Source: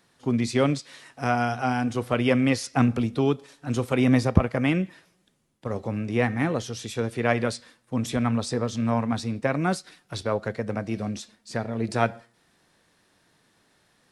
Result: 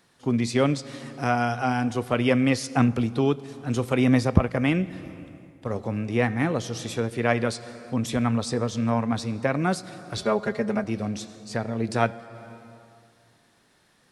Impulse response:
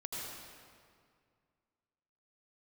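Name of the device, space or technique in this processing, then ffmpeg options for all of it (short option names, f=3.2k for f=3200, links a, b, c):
ducked reverb: -filter_complex "[0:a]asplit=3[a][b][c];[1:a]atrim=start_sample=2205[d];[b][d]afir=irnorm=-1:irlink=0[e];[c]apad=whole_len=622303[f];[e][f]sidechaincompress=threshold=-29dB:ratio=8:attack=11:release=406,volume=-10.5dB[g];[a][g]amix=inputs=2:normalize=0,asettb=1/sr,asplit=3[h][i][j];[h]atrim=end=10.174[k];[i]atrim=start=10.17:end=10.84,asetpts=PTS-STARTPTS,afade=t=in:d=0.004:c=qsin,afade=t=out:st=0.666:d=0.004:c=qsin,aecho=1:1:4.9:0.96,atrim=end_sample=29547[l];[j]atrim=start=10.836[m];[k][l]acrossfade=d=0.004:c1=hsin:c2=qsin[n];[n][m]acrossfade=d=0.004:c1=qsin:c2=hsin"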